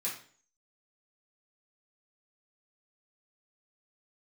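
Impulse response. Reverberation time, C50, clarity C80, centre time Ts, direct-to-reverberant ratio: 0.45 s, 5.5 dB, 10.5 dB, 30 ms, -8.0 dB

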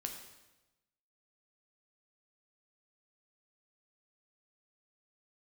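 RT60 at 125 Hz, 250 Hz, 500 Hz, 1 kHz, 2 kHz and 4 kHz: 1.2 s, 1.1 s, 1.1 s, 1.0 s, 0.95 s, 0.95 s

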